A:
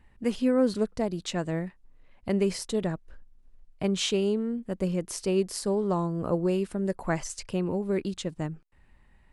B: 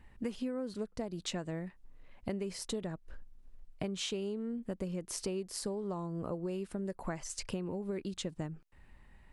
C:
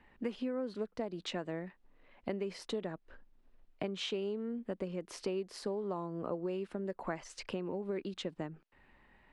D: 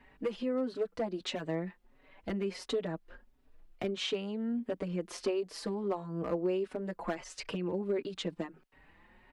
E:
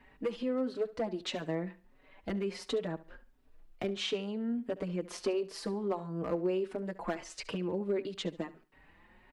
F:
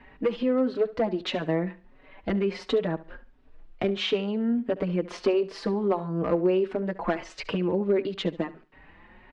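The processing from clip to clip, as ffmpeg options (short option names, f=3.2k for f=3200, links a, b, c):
-af "acompressor=threshold=-35dB:ratio=10,volume=1dB"
-filter_complex "[0:a]acrossover=split=210 4300:gain=0.224 1 0.141[a][b][c];[a][b][c]amix=inputs=3:normalize=0,volume=2dB"
-filter_complex "[0:a]asoftclip=type=hard:threshold=-28.5dB,asplit=2[a][b];[b]adelay=4.9,afreqshift=1.5[c];[a][c]amix=inputs=2:normalize=1,volume=6.5dB"
-af "aecho=1:1:70|140|210:0.133|0.04|0.012"
-af "lowpass=3.6k,volume=8.5dB"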